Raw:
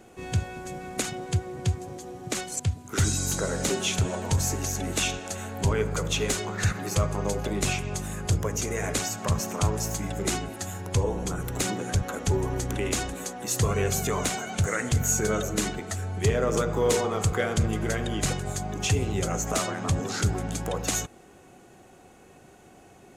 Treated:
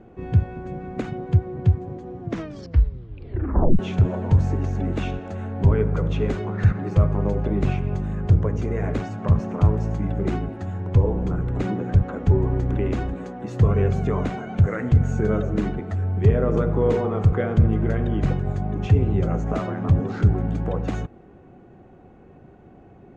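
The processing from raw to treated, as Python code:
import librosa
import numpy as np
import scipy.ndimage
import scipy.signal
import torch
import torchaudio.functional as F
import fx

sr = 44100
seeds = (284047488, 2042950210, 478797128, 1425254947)

y = fx.edit(x, sr, fx.tape_stop(start_s=2.2, length_s=1.59), tone=tone)
y = scipy.signal.sosfilt(scipy.signal.butter(2, 2000.0, 'lowpass', fs=sr, output='sos'), y)
y = fx.low_shelf(y, sr, hz=460.0, db=12.0)
y = F.gain(torch.from_numpy(y), -3.0).numpy()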